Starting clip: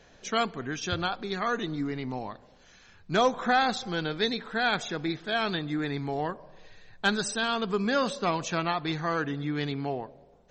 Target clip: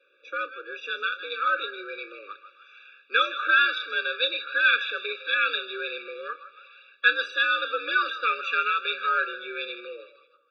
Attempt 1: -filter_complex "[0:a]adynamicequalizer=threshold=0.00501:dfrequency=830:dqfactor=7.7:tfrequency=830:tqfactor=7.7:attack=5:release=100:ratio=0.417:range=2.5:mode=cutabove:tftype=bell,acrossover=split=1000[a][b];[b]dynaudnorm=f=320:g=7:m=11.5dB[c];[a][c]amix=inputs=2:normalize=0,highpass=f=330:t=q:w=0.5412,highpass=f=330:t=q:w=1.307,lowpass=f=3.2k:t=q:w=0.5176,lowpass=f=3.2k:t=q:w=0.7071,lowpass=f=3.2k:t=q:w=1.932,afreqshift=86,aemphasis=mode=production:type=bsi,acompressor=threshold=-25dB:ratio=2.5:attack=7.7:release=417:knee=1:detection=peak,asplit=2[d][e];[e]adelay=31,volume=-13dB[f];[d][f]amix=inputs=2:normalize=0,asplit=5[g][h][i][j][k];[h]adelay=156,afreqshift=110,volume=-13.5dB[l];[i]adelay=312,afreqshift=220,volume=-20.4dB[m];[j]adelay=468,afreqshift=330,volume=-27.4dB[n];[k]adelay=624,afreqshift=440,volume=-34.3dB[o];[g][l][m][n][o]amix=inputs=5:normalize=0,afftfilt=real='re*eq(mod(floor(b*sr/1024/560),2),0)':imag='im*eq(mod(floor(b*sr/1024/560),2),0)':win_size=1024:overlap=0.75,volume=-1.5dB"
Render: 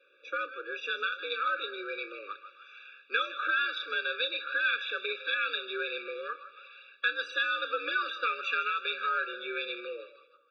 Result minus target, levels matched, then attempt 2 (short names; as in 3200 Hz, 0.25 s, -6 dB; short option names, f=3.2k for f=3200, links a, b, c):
compressor: peak gain reduction +10.5 dB
-filter_complex "[0:a]adynamicequalizer=threshold=0.00501:dfrequency=830:dqfactor=7.7:tfrequency=830:tqfactor=7.7:attack=5:release=100:ratio=0.417:range=2.5:mode=cutabove:tftype=bell,acrossover=split=1000[a][b];[b]dynaudnorm=f=320:g=7:m=11.5dB[c];[a][c]amix=inputs=2:normalize=0,highpass=f=330:t=q:w=0.5412,highpass=f=330:t=q:w=1.307,lowpass=f=3.2k:t=q:w=0.5176,lowpass=f=3.2k:t=q:w=0.7071,lowpass=f=3.2k:t=q:w=1.932,afreqshift=86,aemphasis=mode=production:type=bsi,asplit=2[d][e];[e]adelay=31,volume=-13dB[f];[d][f]amix=inputs=2:normalize=0,asplit=5[g][h][i][j][k];[h]adelay=156,afreqshift=110,volume=-13.5dB[l];[i]adelay=312,afreqshift=220,volume=-20.4dB[m];[j]adelay=468,afreqshift=330,volume=-27.4dB[n];[k]adelay=624,afreqshift=440,volume=-34.3dB[o];[g][l][m][n][o]amix=inputs=5:normalize=0,afftfilt=real='re*eq(mod(floor(b*sr/1024/560),2),0)':imag='im*eq(mod(floor(b*sr/1024/560),2),0)':win_size=1024:overlap=0.75,volume=-1.5dB"